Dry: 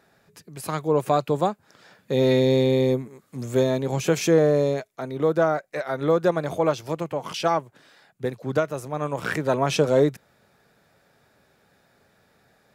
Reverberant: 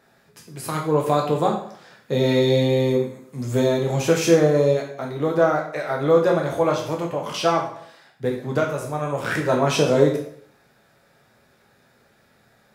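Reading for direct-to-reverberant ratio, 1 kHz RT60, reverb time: -0.5 dB, 0.65 s, 0.65 s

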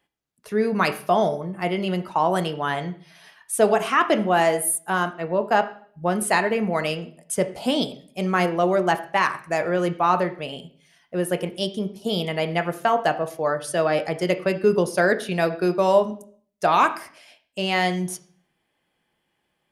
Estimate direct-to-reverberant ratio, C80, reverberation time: 8.0 dB, 17.5 dB, 0.50 s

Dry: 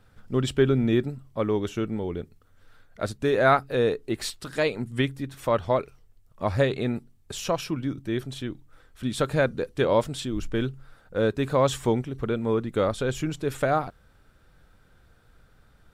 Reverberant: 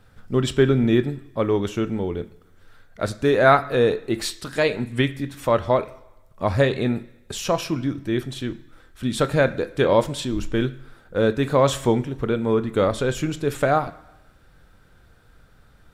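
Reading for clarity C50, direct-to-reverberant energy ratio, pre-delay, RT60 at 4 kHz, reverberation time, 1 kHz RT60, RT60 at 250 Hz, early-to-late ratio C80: 16.5 dB, 11.0 dB, 20 ms, 0.95 s, 1.0 s, 1.0 s, 0.90 s, 19.0 dB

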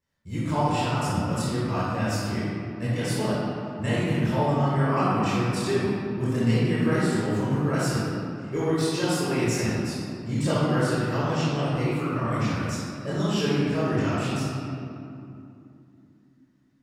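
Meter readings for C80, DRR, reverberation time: -1.5 dB, -10.5 dB, 2.7 s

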